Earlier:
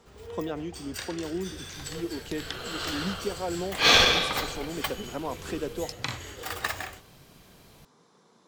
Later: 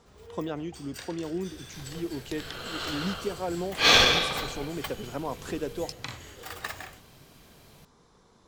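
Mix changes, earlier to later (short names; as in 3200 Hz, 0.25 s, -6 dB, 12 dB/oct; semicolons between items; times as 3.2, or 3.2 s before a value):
speech: remove HPF 150 Hz 24 dB/oct; first sound -5.5 dB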